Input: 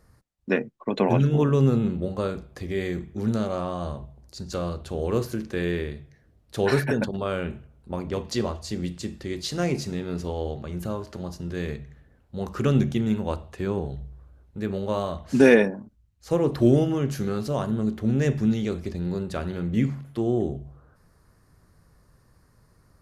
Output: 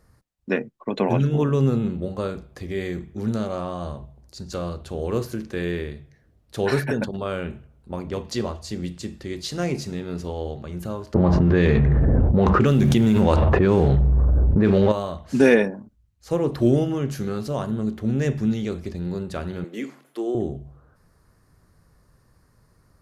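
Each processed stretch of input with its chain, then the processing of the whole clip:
0:11.14–0:14.92: mu-law and A-law mismatch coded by mu + low-pass that shuts in the quiet parts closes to 440 Hz, open at −19.5 dBFS + envelope flattener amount 100%
0:19.64–0:20.35: Chebyshev high-pass filter 320 Hz, order 3 + high-shelf EQ 8,700 Hz +5.5 dB
whole clip: no processing

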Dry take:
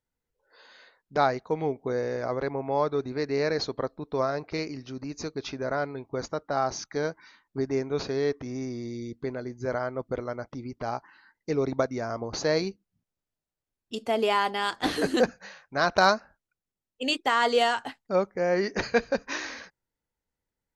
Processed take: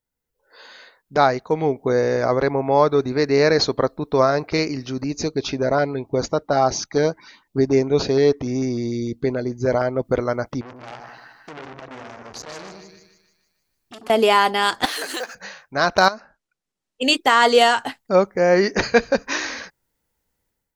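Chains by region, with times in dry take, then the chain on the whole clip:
0:05.04–0:10.05: high-shelf EQ 7,200 Hz −6.5 dB + auto-filter notch saw up 6.7 Hz 910–2,200 Hz
0:10.61–0:14.10: downward compressor, threshold −40 dBFS + echo with a time of its own for lows and highs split 1,100 Hz, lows 90 ms, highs 152 ms, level −6 dB + saturating transformer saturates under 3,000 Hz
0:14.85–0:15.35: mu-law and A-law mismatch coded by mu + high-pass filter 850 Hz + downward compressor 10 to 1, threshold −33 dBFS
0:16.08–0:17.02: low-pass filter 7,200 Hz + downward compressor 12 to 1, threshold −29 dBFS + parametric band 68 Hz −11.5 dB 1.4 octaves
whole clip: high-shelf EQ 9,800 Hz +8.5 dB; automatic gain control gain up to 11 dB

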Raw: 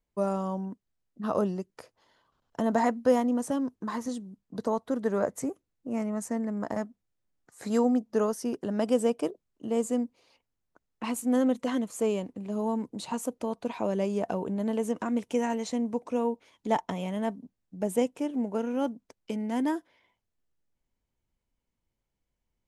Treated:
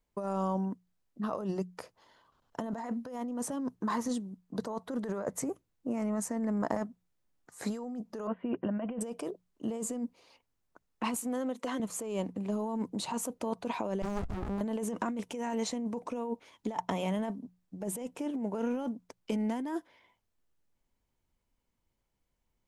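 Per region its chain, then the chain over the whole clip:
0:08.27–0:09.01: Butterworth low-pass 3,000 Hz 72 dB per octave + notch comb filter 430 Hz
0:11.16–0:11.80: high-pass filter 280 Hz + downward compressor 4 to 1, threshold −34 dBFS
0:14.02–0:14.61: flat-topped bell 1,700 Hz −10 dB 2.6 octaves + windowed peak hold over 65 samples
whole clip: parametric band 1,000 Hz +2.5 dB 0.77 octaves; mains-hum notches 60/120/180 Hz; compressor whose output falls as the input rises −32 dBFS, ratio −1; level −1.5 dB

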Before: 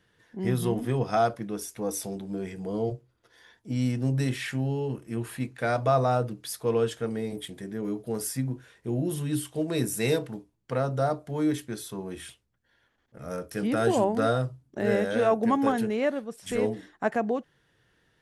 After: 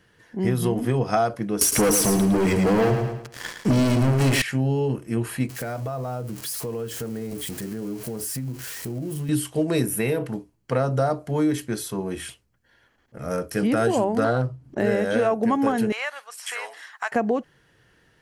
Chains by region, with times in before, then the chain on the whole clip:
0:01.61–0:04.42: leveller curve on the samples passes 5 + repeating echo 109 ms, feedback 31%, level −7.5 dB
0:05.49–0:09.29: spike at every zero crossing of −27.5 dBFS + spectral tilt −1.5 dB per octave + downward compressor, threshold −35 dBFS
0:09.86–0:10.26: flat-topped bell 5,800 Hz −12 dB 1.2 octaves + downward compressor, threshold −25 dBFS
0:14.24–0:14.78: high-shelf EQ 4,500 Hz −10 dB + upward compression, threshold −44 dBFS + highs frequency-modulated by the lows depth 0.2 ms
0:15.92–0:17.12: high-pass filter 940 Hz 24 dB per octave + multiband upward and downward compressor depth 70%
whole clip: notch filter 3,600 Hz, Q 9.9; downward compressor, threshold −25 dBFS; level +7.5 dB

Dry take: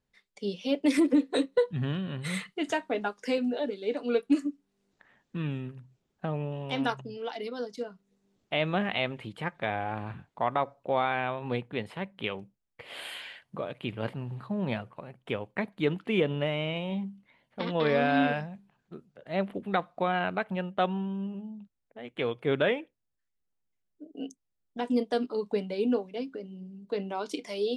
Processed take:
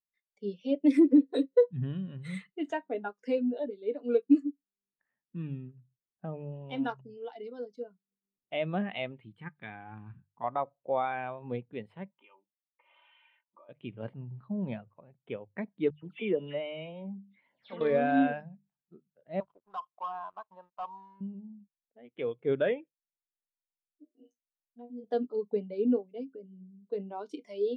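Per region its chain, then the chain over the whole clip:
0:09.21–0:10.44: parametric band 600 Hz −13 dB 0.72 octaves + one half of a high-frequency compander decoder only
0:12.11–0:13.69: comb filter 3.3 ms, depth 77% + downward compressor 2.5 to 1, threshold −43 dBFS + loudspeaker in its box 480–2,900 Hz, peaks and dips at 620 Hz −6 dB, 990 Hz +8 dB, 1,700 Hz −8 dB
0:15.90–0:17.81: low-shelf EQ 150 Hz −10.5 dB + upward compression, threshold −39 dBFS + all-pass dispersion lows, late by 128 ms, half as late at 2,900 Hz
0:19.40–0:21.21: pair of resonant band-passes 2,300 Hz, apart 2.3 octaves + leveller curve on the samples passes 3
0:24.05–0:25.04: downward compressor, threshold −31 dBFS + tuned comb filter 120 Hz, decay 0.18 s, mix 100%
whole clip: mains-hum notches 50/100/150 Hz; every bin expanded away from the loudest bin 1.5 to 1

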